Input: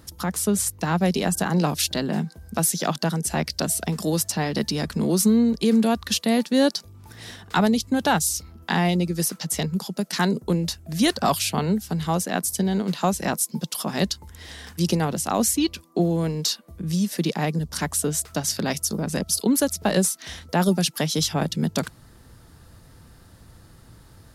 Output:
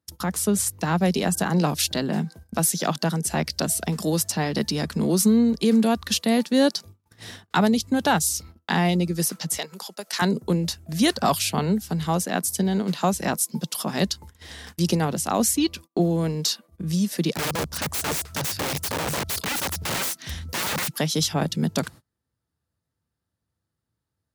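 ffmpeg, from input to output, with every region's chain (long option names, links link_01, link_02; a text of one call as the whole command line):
ffmpeg -i in.wav -filter_complex "[0:a]asettb=1/sr,asplit=3[link_01][link_02][link_03];[link_01]atrim=end=9.574[link_04];[link_02]atrim=start=9.57:end=10.22,asetpts=PTS-STARTPTS,afade=type=in:duration=0.004:curve=qsin,afade=type=out:start_time=0.646:duration=0.004:curve=qsin,highpass=580,acompressor=mode=upward:threshold=-34dB:ratio=2.5:attack=3.2:release=140:knee=2.83:detection=peak[link_05];[link_03]atrim=start=10.216[link_06];[link_04][link_05]acrossfade=duration=0.004:curve1=hsin:curve2=qsin[link_07];[link_07][link_06]acrossfade=duration=0.004:curve1=qsin:curve2=hsin,asettb=1/sr,asplit=3[link_08][link_09][link_10];[link_08]atrim=end=17.334[link_11];[link_09]atrim=start=17.33:end=20.95,asetpts=PTS-STARTPTS,afade=type=in:duration=0.004:curve=qsin,afade=type=out:start_time=3.616:duration=0.004:curve=qsin,asubboost=boost=4.5:cutoff=230,aeval=exprs='(mod(11.9*val(0)+1,2)-1)/11.9':channel_layout=same[link_12];[link_10]atrim=start=20.946[link_13];[link_11][link_12]acrossfade=duration=0.004:curve1=hsin:curve2=qsin[link_14];[link_14][link_13]acrossfade=duration=0.004:curve1=qsin:curve2=hsin,highpass=frequency=60:width=0.5412,highpass=frequency=60:width=1.3066,agate=range=-32dB:threshold=-41dB:ratio=16:detection=peak" out.wav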